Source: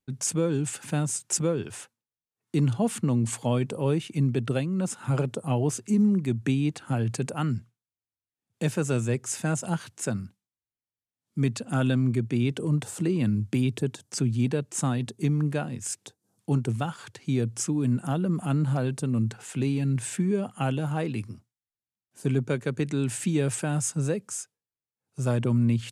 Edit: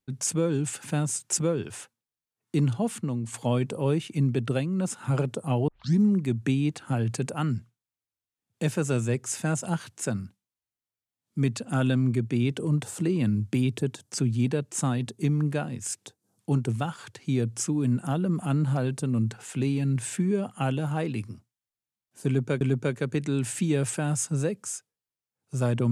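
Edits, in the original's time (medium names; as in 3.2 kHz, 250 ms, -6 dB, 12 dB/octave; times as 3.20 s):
2.58–3.34 s: fade out, to -9 dB
5.68 s: tape start 0.31 s
22.26–22.61 s: loop, 2 plays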